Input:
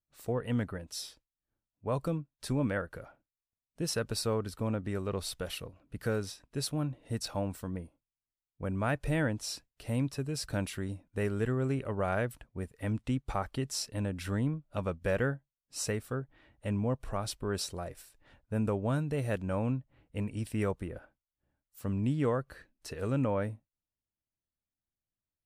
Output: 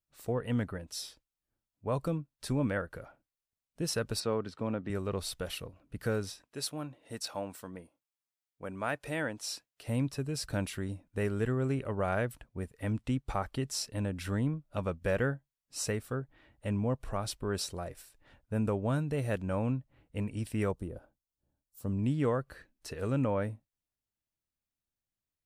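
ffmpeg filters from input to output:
-filter_complex "[0:a]asettb=1/sr,asplit=3[a][b][c];[a]atrim=end=4.204[d];[b]atrim=start=4.2:end=4.9,asetpts=PTS-STARTPTS,afade=t=in:d=0.004:c=qsin,afade=t=out:st=0.696:d=0.004:c=qsin,highpass=140,lowpass=4.6k[e];[c]atrim=start=4.896[f];[d][e]acrossfade=d=0.004:c1=hsin:c2=qsin[g];[g][f]acrossfade=d=0.004:c1=qsin:c2=hsin,asettb=1/sr,asplit=3[h][i][j];[h]atrim=end=6.424[k];[i]atrim=start=6.42:end=9.87,asetpts=PTS-STARTPTS,afade=t=in:d=0.004:c=qsin,afade=t=out:st=3.446:d=0.004:c=qsin,highpass=f=460:p=1[l];[j]atrim=start=9.866[m];[k][l]acrossfade=d=0.004:c1=hsin:c2=qsin[n];[n][m]acrossfade=d=0.004:c1=qsin:c2=hsin,asettb=1/sr,asplit=3[o][p][q];[o]atrim=end=20.724[r];[p]atrim=start=20.72:end=21.99,asetpts=PTS-STARTPTS,afade=t=in:d=0.004:c=qsin,afade=t=out:st=1.266:d=0.004:c=qsin,equalizer=f=2k:t=o:w=1.5:g=-12.5[s];[q]atrim=start=21.986[t];[r][s]acrossfade=d=0.004:c1=hsin:c2=qsin[u];[u][t]acrossfade=d=0.004:c1=qsin:c2=hsin"

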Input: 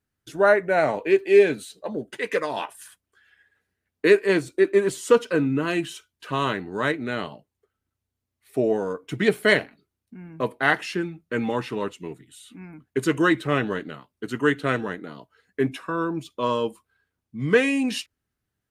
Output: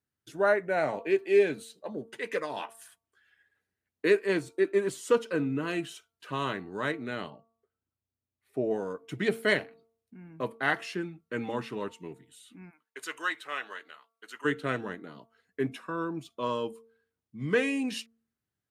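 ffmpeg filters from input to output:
-filter_complex "[0:a]asettb=1/sr,asplit=3[a][b][c];[a]atrim=end=7.304[d];[b]atrim=start=7.3:end=8.71,asetpts=PTS-STARTPTS,afade=t=in:d=0.004:c=qsin,afade=t=out:st=1.406:d=0.004:c=qsin,highshelf=f=2.4k:g=-10.5[e];[c]atrim=start=8.706[f];[d][e]acrossfade=d=0.004:c1=hsin:c2=qsin[g];[g][f]acrossfade=d=0.004:c1=qsin:c2=hsin,asplit=3[h][i][j];[h]afade=t=out:st=12.69:d=0.02[k];[i]highpass=980,afade=t=in:st=12.69:d=0.02,afade=t=out:st=14.44:d=0.02[l];[j]afade=t=in:st=14.44:d=0.02[m];[k][l][m]amix=inputs=3:normalize=0,highpass=76,bandreject=f=227.3:t=h:w=4,bandreject=f=454.6:t=h:w=4,bandreject=f=681.9:t=h:w=4,bandreject=f=909.2:t=h:w=4,bandreject=f=1.1365k:t=h:w=4,bandreject=f=1.3638k:t=h:w=4,volume=-7dB"

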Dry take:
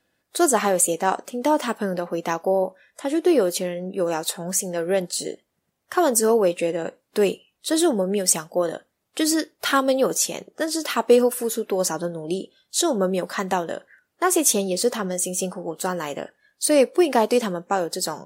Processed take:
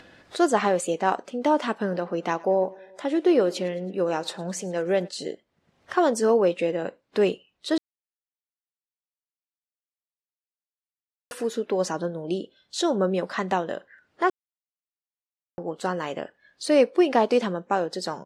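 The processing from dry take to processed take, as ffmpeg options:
-filter_complex "[0:a]asplit=3[a][b][c];[a]afade=t=out:st=1.83:d=0.02[d];[b]aecho=1:1:108|216|324|432:0.075|0.0435|0.0252|0.0146,afade=t=in:st=1.83:d=0.02,afade=t=out:st=5.07:d=0.02[e];[c]afade=t=in:st=5.07:d=0.02[f];[d][e][f]amix=inputs=3:normalize=0,asplit=5[g][h][i][j][k];[g]atrim=end=7.78,asetpts=PTS-STARTPTS,afade=t=out:st=7.776:d=0.004:c=hsin[l];[h]atrim=start=7.78:end=11.31,asetpts=PTS-STARTPTS,volume=0[m];[i]atrim=start=11.31:end=14.3,asetpts=PTS-STARTPTS,afade=t=in:d=0.004:c=hsin,afade=t=out:st=2.986:d=0.004:c=hsin[n];[j]atrim=start=14.3:end=15.58,asetpts=PTS-STARTPTS,volume=0[o];[k]atrim=start=15.58,asetpts=PTS-STARTPTS,afade=t=in:d=0.004:c=hsin[p];[l][m][n][o][p]concat=n=5:v=0:a=1,lowpass=4.3k,acompressor=mode=upward:threshold=-32dB:ratio=2.5,volume=-1.5dB"

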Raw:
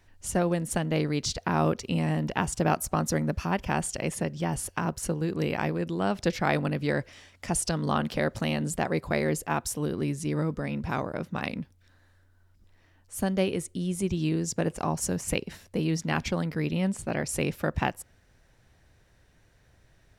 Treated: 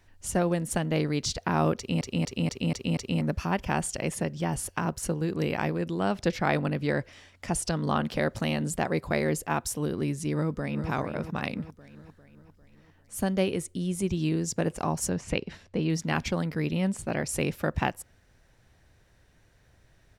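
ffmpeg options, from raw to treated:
-filter_complex "[0:a]asettb=1/sr,asplit=3[a][b][c];[a]atrim=end=6.154[d];[b]atrim=start=6.15:end=8.13,asetpts=PTS-STARTPTS,afade=t=in:d=0.004:c=qsin,afade=t=out:st=1.976:d=0.004:c=qsin,highshelf=f=5.1k:g=-4[e];[c]atrim=start=8.126[f];[d][e]acrossfade=d=0.004:c1=hsin:c2=qsin[g];[g][f]acrossfade=d=0.004:c1=qsin:c2=hsin,asplit=2[h][i];[i]afade=t=in:st=10.33:d=0.01,afade=t=out:st=10.9:d=0.01,aecho=0:1:400|800|1200|1600|2000|2400:0.354813|0.195147|0.107331|0.0590321|0.0324676|0.0178572[j];[h][j]amix=inputs=2:normalize=0,asettb=1/sr,asplit=3[k][l][m];[k]atrim=end=15.094[n];[l]atrim=start=15.09:end=15.9,asetpts=PTS-STARTPTS,afade=t=in:d=0.004:c=qsin,afade=t=out:st=0.806:d=0.004:c=qsin,lowpass=4.7k[o];[m]atrim=start=15.896[p];[n][o]acrossfade=d=0.004:c1=hsin:c2=qsin[q];[q][p]acrossfade=d=0.004:c1=qsin:c2=hsin,asplit=7[r][s][t][u][v][w][x];[r]atrim=end=2.012[y];[s]atrim=start=1.768:end=2.012[z];[t]atrim=start=1.768:end=2.012[aa];[u]atrim=start=1.768:end=2.012[ab];[v]atrim=start=1.768:end=2.012[ac];[w]atrim=start=1.768:end=2.012[ad];[x]atrim=start=3.208[ae];[y][z]acrossfade=d=0.004:c1=hsin:c2=hsin[af];[af][aa]acrossfade=d=0.004:c1=hsin:c2=hsin[ag];[ag][ab]acrossfade=d=0.004:c1=hsin:c2=hsin[ah];[ah][ac]acrossfade=d=0.004:c1=hsin:c2=hsin[ai];[ai][ad]acrossfade=d=0.004:c1=hsin:c2=hsin[aj];[aj][ae]acrossfade=d=0.004:c1=hsin:c2=hsin"

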